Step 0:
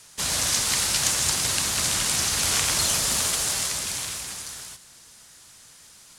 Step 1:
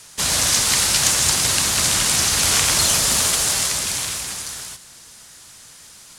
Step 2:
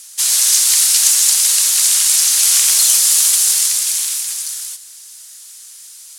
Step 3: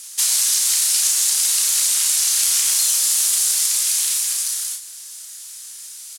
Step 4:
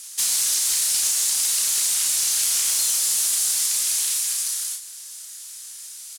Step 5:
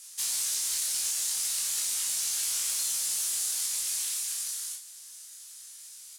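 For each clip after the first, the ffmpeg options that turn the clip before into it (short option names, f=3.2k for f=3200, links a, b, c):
-af "acontrast=55"
-af "aderivative,aeval=exprs='0.841*sin(PI/2*1.41*val(0)/0.841)':c=same,acrusher=bits=9:mix=0:aa=0.000001"
-filter_complex "[0:a]acompressor=threshold=-16dB:ratio=6,asplit=2[a][b];[b]adelay=33,volume=-5dB[c];[a][c]amix=inputs=2:normalize=0"
-af "asoftclip=type=tanh:threshold=-12dB,volume=-2dB"
-af "flanger=delay=18.5:depth=3.6:speed=0.38,volume=-5.5dB"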